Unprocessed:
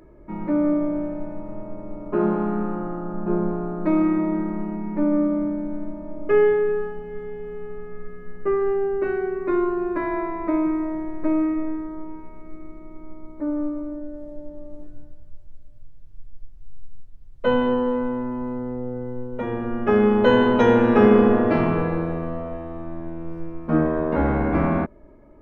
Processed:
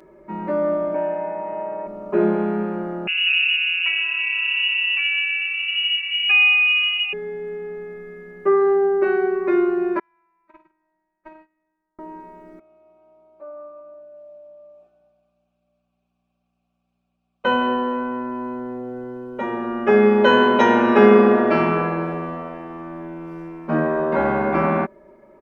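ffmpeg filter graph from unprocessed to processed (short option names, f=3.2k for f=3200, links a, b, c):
-filter_complex "[0:a]asettb=1/sr,asplit=3[a][b][c];[a]atrim=end=0.944[d];[b]atrim=start=0.94:end=1.87,asetpts=PTS-STARTPTS,afade=t=in:d=0.004:c=qsin,afade=t=out:st=0.926:d=0.004:c=qsin,highpass=190,equalizer=f=210:t=q:w=4:g=-5,equalizer=f=320:t=q:w=4:g=-3,equalizer=f=460:t=q:w=4:g=6,equalizer=f=840:t=q:w=4:g=10,equalizer=f=1.7k:t=q:w=4:g=5,equalizer=f=2.4k:t=q:w=4:g=6,lowpass=f=3.5k:w=0.5412,lowpass=f=3.5k:w=1.3066,aecho=1:1:6.3:0.69,atrim=end_sample=41013[e];[c]atrim=start=1.866[f];[d][e]acrossfade=d=0.004:c1=hsin:c2=qsin[g];[g][f]acrossfade=d=0.004:c1=qsin:c2=hsin,asettb=1/sr,asplit=3[h][i][j];[h]atrim=end=3.074[k];[i]atrim=start=3.07:end=7.13,asetpts=PTS-STARTPTS,afade=t=in:d=0.004:c=qsin,afade=t=out:st=4.056:d=0.004:c=qsin,lowpass=f=2.5k:t=q:w=0.5098,lowpass=f=2.5k:t=q:w=0.6013,lowpass=f=2.5k:t=q:w=0.9,lowpass=f=2.5k:t=q:w=2.563,afreqshift=-2900,acompressor=threshold=-26dB:ratio=2:attack=3.2:release=140:knee=1:detection=peak[l];[j]atrim=start=7.126[m];[k][l]acrossfade=d=0.004:c1=hsin:c2=qsin[n];[n][m]acrossfade=d=0.004:c1=qsin:c2=hsin,asettb=1/sr,asplit=3[o][p][q];[o]atrim=end=9.994[r];[p]atrim=start=9.99:end=11.99,asetpts=PTS-STARTPTS,afade=t=in:d=0.004:c=qsin,afade=t=out:st=1.996:d=0.004:c=qsin,agate=range=-35dB:threshold=-18dB:ratio=16:release=100:detection=peak,equalizer=f=390:w=0.58:g=-14.5[s];[q]atrim=start=11.986[t];[r][s]acrossfade=d=0.004:c1=hsin:c2=qsin[u];[u][t]acrossfade=d=0.004:c1=qsin:c2=hsin,asettb=1/sr,asplit=3[v][w][x];[v]atrim=end=12.594[y];[w]atrim=start=12.59:end=17.45,asetpts=PTS-STARTPTS,afade=t=in:d=0.004:c=qsin,afade=t=out:st=4.856:d=0.004:c=qsin,asplit=3[z][aa][ab];[z]bandpass=f=730:t=q:w=8,volume=0dB[ac];[aa]bandpass=f=1.09k:t=q:w=8,volume=-6dB[ad];[ab]bandpass=f=2.44k:t=q:w=8,volume=-9dB[ae];[ac][ad][ae]amix=inputs=3:normalize=0,aeval=exprs='val(0)+0.000501*(sin(2*PI*60*n/s)+sin(2*PI*2*60*n/s)/2+sin(2*PI*3*60*n/s)/3+sin(2*PI*4*60*n/s)/4+sin(2*PI*5*60*n/s)/5)':c=same,highshelf=f=2.3k:g=11[af];[x]atrim=start=17.446[ag];[y][af]acrossfade=d=0.004:c1=hsin:c2=qsin[ah];[ah][ag]acrossfade=d=0.004:c1=qsin:c2=hsin,highpass=f=470:p=1,aecho=1:1:5.2:0.72,volume=4.5dB"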